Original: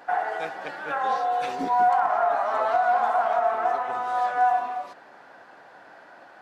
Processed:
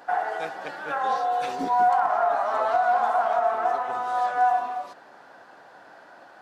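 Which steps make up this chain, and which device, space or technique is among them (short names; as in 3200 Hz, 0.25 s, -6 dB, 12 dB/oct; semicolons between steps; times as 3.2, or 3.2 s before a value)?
exciter from parts (in parallel at -8 dB: HPF 2000 Hz 24 dB/oct + soft clip -39 dBFS, distortion -14 dB)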